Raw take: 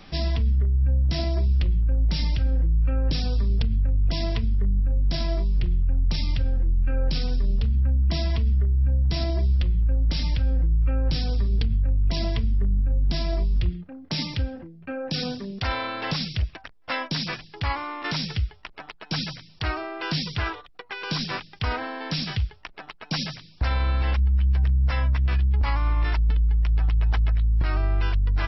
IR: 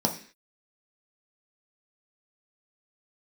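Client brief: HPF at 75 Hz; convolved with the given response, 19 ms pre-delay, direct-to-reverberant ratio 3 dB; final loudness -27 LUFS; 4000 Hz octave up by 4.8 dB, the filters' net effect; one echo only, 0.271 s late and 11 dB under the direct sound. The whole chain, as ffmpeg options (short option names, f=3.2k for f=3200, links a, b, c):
-filter_complex "[0:a]highpass=75,equalizer=f=4k:t=o:g=6,aecho=1:1:271:0.282,asplit=2[a][b];[1:a]atrim=start_sample=2205,adelay=19[c];[b][c]afir=irnorm=-1:irlink=0,volume=-13dB[d];[a][d]amix=inputs=2:normalize=0,volume=-1dB"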